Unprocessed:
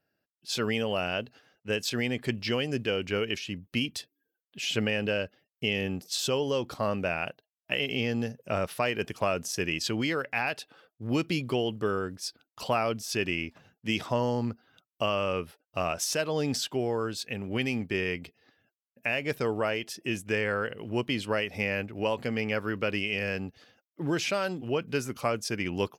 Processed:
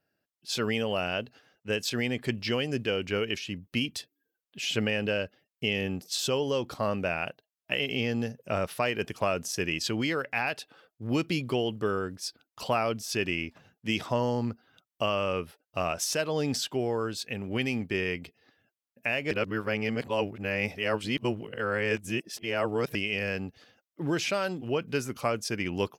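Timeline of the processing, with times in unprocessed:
0:19.31–0:22.95: reverse

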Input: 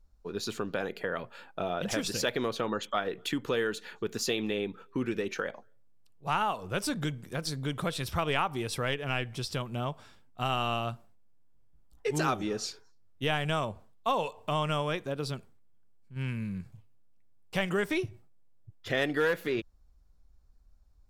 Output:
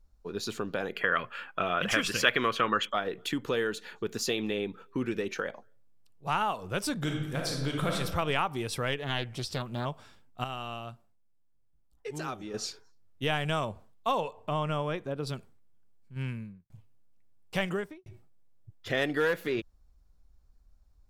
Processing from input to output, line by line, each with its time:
0:00.96–0:02.89: gain on a spectral selection 1,000–3,400 Hz +10 dB
0:06.97–0:07.95: thrown reverb, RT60 1.1 s, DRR 0 dB
0:08.99–0:09.86: highs frequency-modulated by the lows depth 0.36 ms
0:10.44–0:12.54: clip gain −8 dB
0:14.20–0:15.27: high-shelf EQ 2,500 Hz −9.5 dB
0:16.17–0:16.70: fade out and dull
0:17.61–0:18.06: fade out and dull

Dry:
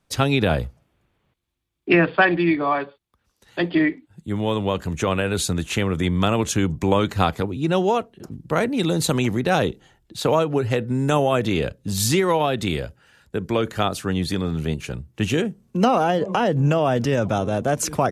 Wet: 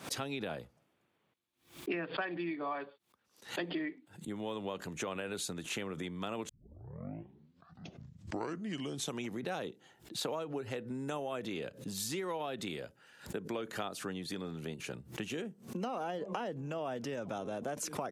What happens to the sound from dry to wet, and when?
0:06.49: tape start 2.84 s
whole clip: downward compressor 6 to 1, threshold −29 dBFS; high-pass filter 200 Hz 12 dB per octave; background raised ahead of every attack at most 150 dB per second; level −5.5 dB

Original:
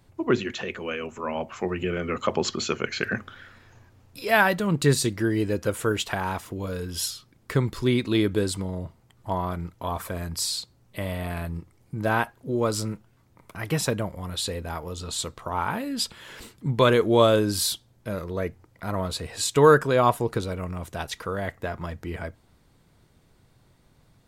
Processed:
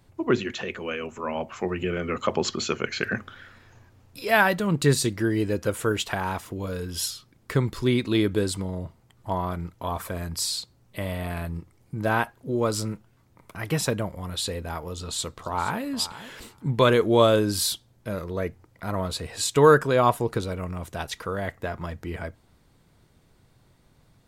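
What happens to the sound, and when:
0:14.92–0:15.82: delay throw 470 ms, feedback 10%, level −14.5 dB

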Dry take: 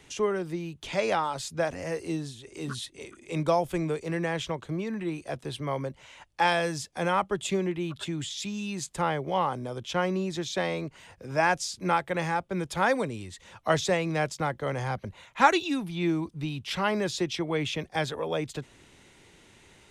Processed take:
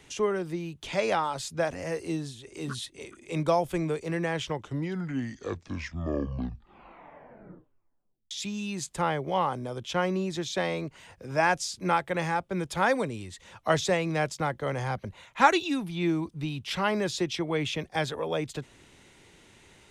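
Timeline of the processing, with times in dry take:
0:04.29: tape stop 4.02 s

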